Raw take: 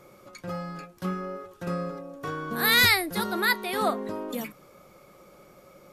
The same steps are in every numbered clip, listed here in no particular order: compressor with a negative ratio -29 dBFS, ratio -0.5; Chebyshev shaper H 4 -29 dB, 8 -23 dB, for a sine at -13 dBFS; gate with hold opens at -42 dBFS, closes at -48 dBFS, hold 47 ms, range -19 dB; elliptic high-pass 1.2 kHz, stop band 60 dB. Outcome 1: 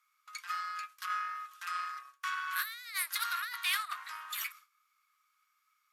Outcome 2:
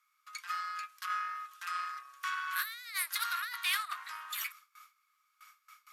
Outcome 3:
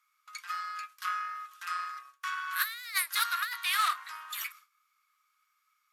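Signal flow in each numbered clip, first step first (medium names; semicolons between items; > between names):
compressor with a negative ratio > Chebyshev shaper > elliptic high-pass > gate with hold; gate with hold > compressor with a negative ratio > Chebyshev shaper > elliptic high-pass; Chebyshev shaper > elliptic high-pass > compressor with a negative ratio > gate with hold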